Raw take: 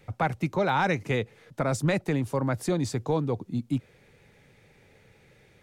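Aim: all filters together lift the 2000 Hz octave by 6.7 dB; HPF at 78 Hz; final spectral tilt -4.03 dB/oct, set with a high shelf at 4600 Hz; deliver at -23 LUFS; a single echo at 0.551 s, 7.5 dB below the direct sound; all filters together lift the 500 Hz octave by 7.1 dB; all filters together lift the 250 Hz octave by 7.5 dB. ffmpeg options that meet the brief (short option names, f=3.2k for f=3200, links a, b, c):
-af "highpass=78,equalizer=f=250:t=o:g=8,equalizer=f=500:t=o:g=6,equalizer=f=2k:t=o:g=9,highshelf=f=4.6k:g=-5.5,aecho=1:1:551:0.422,volume=-1dB"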